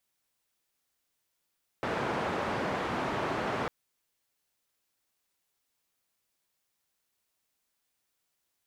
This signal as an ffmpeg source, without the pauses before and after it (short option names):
-f lavfi -i "anoisesrc=c=white:d=1.85:r=44100:seed=1,highpass=f=100,lowpass=f=1100,volume=-14.2dB"